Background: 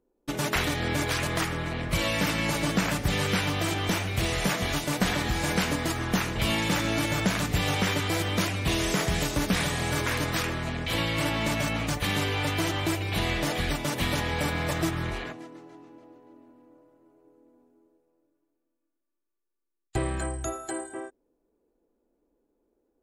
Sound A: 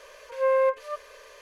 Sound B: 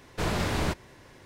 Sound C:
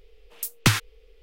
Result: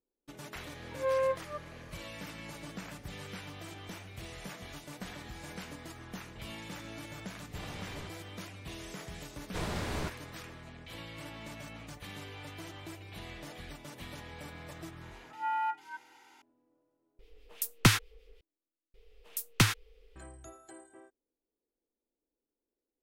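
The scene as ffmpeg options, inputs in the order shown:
ffmpeg -i bed.wav -i cue0.wav -i cue1.wav -i cue2.wav -filter_complex "[1:a]asplit=2[link_01][link_02];[2:a]asplit=2[link_03][link_04];[3:a]asplit=2[link_05][link_06];[0:a]volume=-18dB[link_07];[link_03]lowpass=10000[link_08];[link_02]afreqshift=350[link_09];[link_05]acrossover=split=1700[link_10][link_11];[link_10]aeval=exprs='val(0)*(1-0.5/2+0.5/2*cos(2*PI*6.2*n/s))':channel_layout=same[link_12];[link_11]aeval=exprs='val(0)*(1-0.5/2-0.5/2*cos(2*PI*6.2*n/s))':channel_layout=same[link_13];[link_12][link_13]amix=inputs=2:normalize=0[link_14];[link_07]asplit=2[link_15][link_16];[link_15]atrim=end=18.944[link_17];[link_06]atrim=end=1.22,asetpts=PTS-STARTPTS,volume=-5.5dB[link_18];[link_16]atrim=start=20.156[link_19];[link_01]atrim=end=1.41,asetpts=PTS-STARTPTS,volume=-7.5dB,afade=type=in:duration=0.004:curve=hsin,afade=type=out:start_time=1.406:duration=0.004:curve=hsin,adelay=620[link_20];[link_08]atrim=end=1.25,asetpts=PTS-STARTPTS,volume=-18dB,afade=type=in:duration=0.004:curve=hsin,afade=type=out:start_time=1.246:duration=0.004:curve=hsin,adelay=7360[link_21];[link_04]atrim=end=1.25,asetpts=PTS-STARTPTS,volume=-8dB,afade=type=in:duration=0.004:curve=hsin,afade=type=out:start_time=1.246:duration=0.004:curve=hsin,adelay=9360[link_22];[link_09]atrim=end=1.41,asetpts=PTS-STARTPTS,volume=-10.5dB,afade=type=in:duration=0.004:curve=hsin,afade=type=out:start_time=1.406:duration=0.004:curve=hsin,adelay=15010[link_23];[link_14]atrim=end=1.22,asetpts=PTS-STARTPTS,volume=-1dB,afade=type=in:duration=0.004:curve=hsin,afade=type=out:start_time=1.216:duration=0.004:curve=hsin,adelay=17190[link_24];[link_17][link_18]acrossfade=duration=0.004:curve1=hsin:curve2=hsin[link_25];[link_25][link_19]acrossfade=duration=0.004:curve1=hsin:curve2=hsin[link_26];[link_26][link_20][link_21][link_22][link_23][link_24]amix=inputs=6:normalize=0" out.wav

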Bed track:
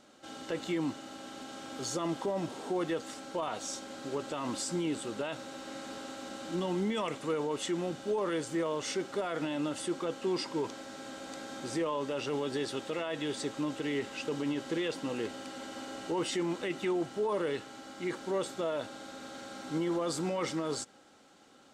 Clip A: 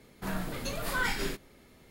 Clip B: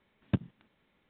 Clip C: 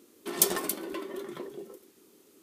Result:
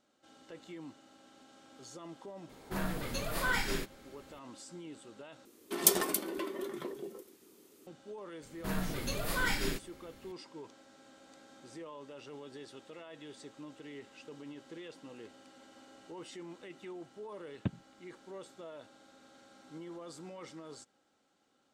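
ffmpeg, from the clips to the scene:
ffmpeg -i bed.wav -i cue0.wav -i cue1.wav -i cue2.wav -filter_complex "[1:a]asplit=2[link_01][link_02];[0:a]volume=-14.5dB[link_03];[link_02]equalizer=frequency=960:width=0.62:gain=-3.5[link_04];[link_03]asplit=2[link_05][link_06];[link_05]atrim=end=5.454[link_07];[3:a]atrim=end=2.42,asetpts=PTS-STARTPTS,volume=-1dB[link_08];[link_06]atrim=start=7.866[link_09];[link_01]atrim=end=1.9,asetpts=PTS-STARTPTS,volume=-1.5dB,afade=type=in:duration=0.004:curve=hsin,afade=type=out:start_time=1.896:duration=0.004:curve=hsin,adelay=2490[link_10];[link_04]atrim=end=1.9,asetpts=PTS-STARTPTS,afade=type=in:duration=0.004:curve=hsin,afade=type=out:start_time=1.896:duration=0.004:curve=hsin,adelay=371322S[link_11];[2:a]atrim=end=1.09,asetpts=PTS-STARTPTS,volume=-6dB,afade=type=in:duration=0.004:curve=hsin,afade=type=out:start_time=1.086:duration=0.004:curve=hsin,adelay=763812S[link_12];[link_07][link_08]acrossfade=duration=0.004:curve1=hsin:curve2=hsin[link_13];[link_13][link_09]acrossfade=duration=0.004:curve1=hsin:curve2=hsin[link_14];[link_14][link_10][link_11][link_12]amix=inputs=4:normalize=0" out.wav

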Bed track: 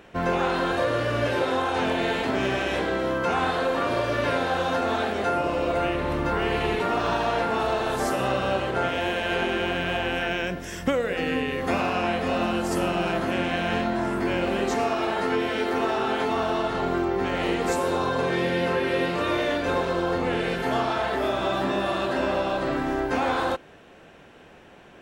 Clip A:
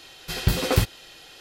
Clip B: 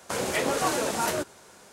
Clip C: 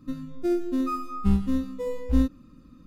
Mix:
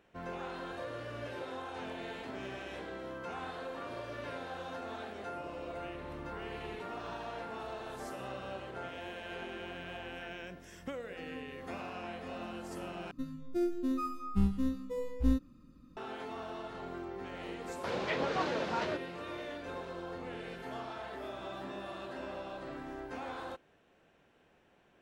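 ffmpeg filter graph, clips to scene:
ffmpeg -i bed.wav -i cue0.wav -i cue1.wav -i cue2.wav -filter_complex "[0:a]volume=-17.5dB[link_01];[2:a]lowpass=frequency=4300:width=0.5412,lowpass=frequency=4300:width=1.3066[link_02];[link_01]asplit=2[link_03][link_04];[link_03]atrim=end=13.114[link_05];[3:a]atrim=end=2.86,asetpts=PTS-STARTPTS,volume=-7dB[link_06];[link_04]atrim=start=15.966[link_07];[link_02]atrim=end=1.72,asetpts=PTS-STARTPTS,volume=-7dB,afade=type=in:duration=0.004:curve=hsin,afade=type=out:start_time=1.716:duration=0.004:curve=hsin,adelay=17740[link_08];[link_05][link_06]acrossfade=duration=0.004:curve1=hsin:curve2=hsin[link_09];[link_09][link_07]acrossfade=duration=0.004:curve1=hsin:curve2=hsin[link_10];[link_10][link_08]amix=inputs=2:normalize=0" out.wav

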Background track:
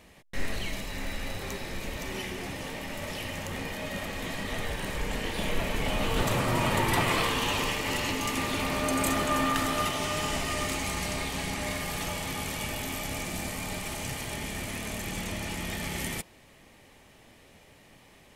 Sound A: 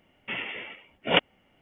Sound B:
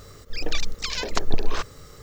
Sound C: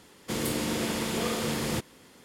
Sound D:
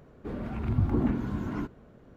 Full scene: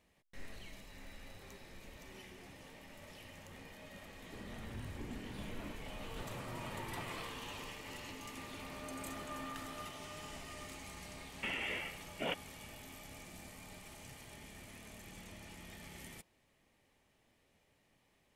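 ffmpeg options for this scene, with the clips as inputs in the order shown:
ffmpeg -i bed.wav -i cue0.wav -i cue1.wav -i cue2.wav -i cue3.wav -filter_complex "[0:a]volume=-18dB[link_01];[4:a]alimiter=limit=-21.5dB:level=0:latency=1:release=212[link_02];[1:a]acompressor=threshold=-33dB:ratio=6:attack=3.2:release=140:knee=1:detection=peak[link_03];[link_02]atrim=end=2.16,asetpts=PTS-STARTPTS,volume=-15.5dB,afade=type=in:duration=0.004:curve=hsin,afade=type=out:start_time=2.156:duration=0.004:curve=hsin,adelay=4070[link_04];[link_03]atrim=end=1.61,asetpts=PTS-STARTPTS,volume=-1.5dB,afade=type=in:duration=0.004:curve=hsin,afade=type=out:start_time=1.606:duration=0.004:curve=hsin,adelay=11150[link_05];[link_01][link_04][link_05]amix=inputs=3:normalize=0" out.wav

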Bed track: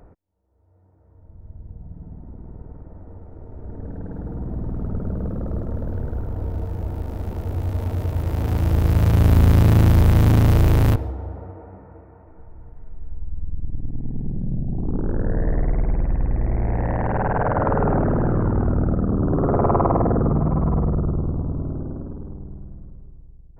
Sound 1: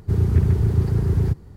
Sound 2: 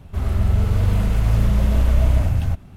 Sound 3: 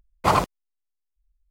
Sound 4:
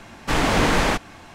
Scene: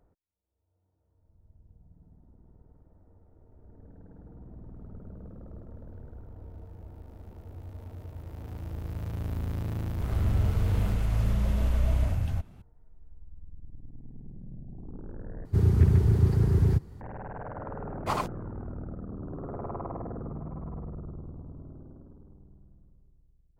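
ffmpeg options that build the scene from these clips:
ffmpeg -i bed.wav -i cue0.wav -i cue1.wav -i cue2.wav -filter_complex "[0:a]volume=-18.5dB,asplit=2[link_01][link_02];[link_01]atrim=end=15.454[link_03];[1:a]atrim=end=1.56,asetpts=PTS-STARTPTS,volume=-3dB[link_04];[link_02]atrim=start=17.006[link_05];[2:a]atrim=end=2.76,asetpts=PTS-STARTPTS,volume=-9dB,afade=type=in:duration=0.004:curve=hsin,afade=type=out:start_time=2.756:duration=0.004:curve=hsin,adelay=434826S[link_06];[3:a]atrim=end=1.5,asetpts=PTS-STARTPTS,volume=-10.5dB,afade=type=in:duration=0.004:curve=hsin,afade=type=out:start_time=1.496:duration=0.004:curve=hsin,adelay=17820[link_07];[link_03][link_04]acrossfade=duration=0.004:curve1=hsin:curve2=hsin[link_08];[link_08][link_05]acrossfade=duration=0.004:curve1=hsin:curve2=hsin[link_09];[link_09][link_06][link_07]amix=inputs=3:normalize=0" out.wav

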